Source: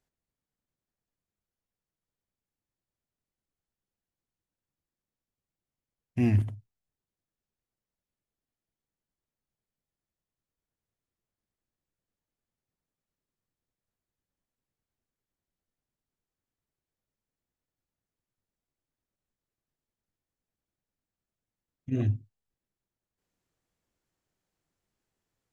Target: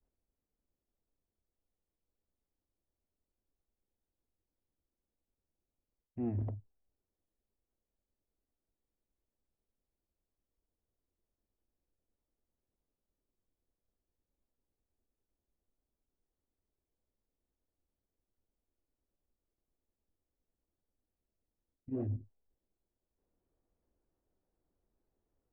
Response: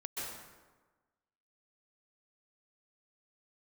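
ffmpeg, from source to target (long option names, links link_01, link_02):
-af "adynamicequalizer=threshold=0.00708:dfrequency=610:dqfactor=0.8:tfrequency=610:tqfactor=0.8:attack=5:release=100:ratio=0.375:range=3:mode=boostabove:tftype=bell,areverse,acompressor=threshold=-34dB:ratio=6,areverse,equalizer=frequency=140:width_type=o:width=1.3:gain=-14,asoftclip=type=tanh:threshold=-33.5dB,adynamicsmooth=sensitivity=0.5:basefreq=570,volume=9.5dB"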